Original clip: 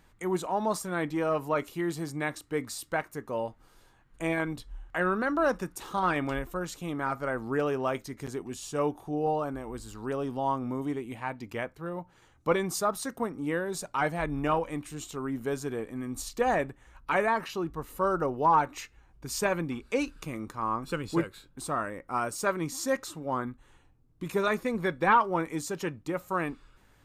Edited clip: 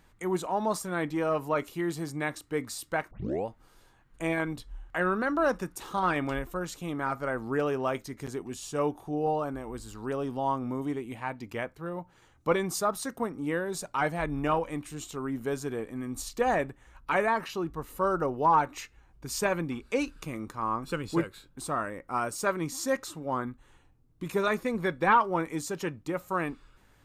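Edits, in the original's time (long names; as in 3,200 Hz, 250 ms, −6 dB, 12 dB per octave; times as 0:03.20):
0:03.11: tape start 0.35 s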